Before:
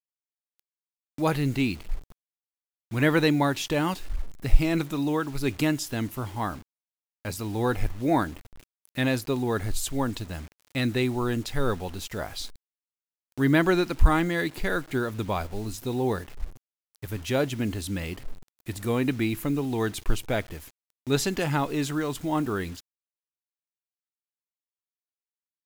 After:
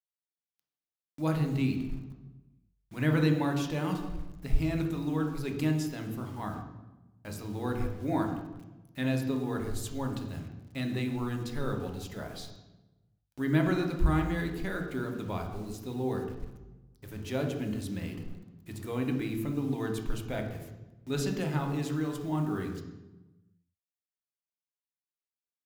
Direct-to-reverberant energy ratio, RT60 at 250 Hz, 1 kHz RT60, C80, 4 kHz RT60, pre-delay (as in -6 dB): 3.0 dB, 1.6 s, 0.95 s, 8.0 dB, 0.75 s, 3 ms